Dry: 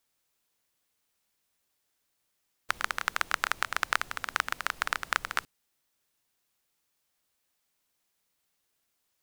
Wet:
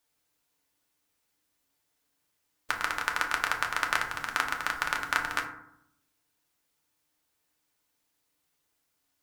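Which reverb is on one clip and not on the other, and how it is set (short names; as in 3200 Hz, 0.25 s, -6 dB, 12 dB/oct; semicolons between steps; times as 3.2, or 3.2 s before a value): FDN reverb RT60 0.74 s, low-frequency decay 1.4×, high-frequency decay 0.4×, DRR 1 dB; gain -1 dB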